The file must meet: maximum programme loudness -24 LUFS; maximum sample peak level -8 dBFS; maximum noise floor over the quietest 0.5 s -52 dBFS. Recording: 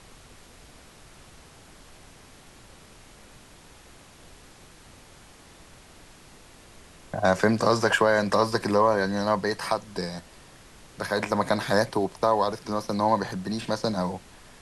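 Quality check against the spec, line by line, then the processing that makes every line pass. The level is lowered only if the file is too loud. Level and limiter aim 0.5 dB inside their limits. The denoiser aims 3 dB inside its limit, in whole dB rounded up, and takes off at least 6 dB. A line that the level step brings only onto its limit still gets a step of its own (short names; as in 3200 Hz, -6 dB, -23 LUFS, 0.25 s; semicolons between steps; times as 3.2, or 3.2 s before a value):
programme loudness -25.0 LUFS: OK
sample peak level -7.0 dBFS: fail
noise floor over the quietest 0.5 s -51 dBFS: fail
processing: denoiser 6 dB, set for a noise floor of -51 dBFS; limiter -8.5 dBFS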